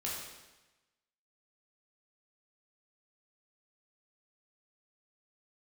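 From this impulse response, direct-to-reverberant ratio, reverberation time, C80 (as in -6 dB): -5.5 dB, 1.1 s, 3.0 dB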